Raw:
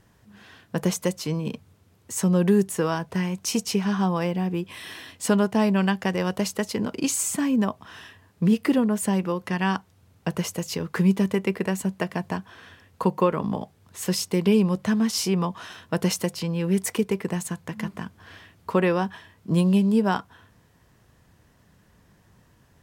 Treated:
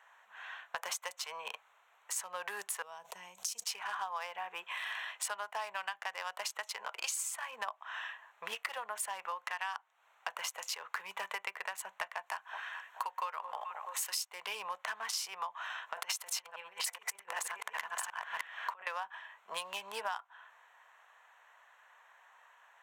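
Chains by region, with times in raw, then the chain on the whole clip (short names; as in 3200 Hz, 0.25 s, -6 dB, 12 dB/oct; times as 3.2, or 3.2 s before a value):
2.82–3.64 EQ curve 200 Hz 0 dB, 840 Hz -19 dB, 1600 Hz -26 dB, 6400 Hz -4 dB + sustainer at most 27 dB/s
12.26–14.23 tilt +2 dB/oct + notch 3400 Hz, Q 17 + echo with dull and thin repeats by turns 0.215 s, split 990 Hz, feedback 60%, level -12.5 dB
15.87–18.87 reverse delay 0.372 s, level -1.5 dB + negative-ratio compressor -27 dBFS, ratio -0.5
whole clip: Wiener smoothing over 9 samples; inverse Chebyshev high-pass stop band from 310 Hz, stop band 50 dB; compressor 6:1, threshold -43 dBFS; gain +7 dB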